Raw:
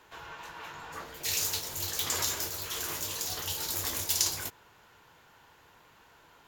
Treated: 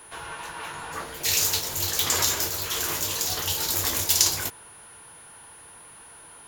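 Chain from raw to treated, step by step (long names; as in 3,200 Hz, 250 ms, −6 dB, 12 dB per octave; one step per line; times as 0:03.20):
steady tone 9,800 Hz −54 dBFS
level +7.5 dB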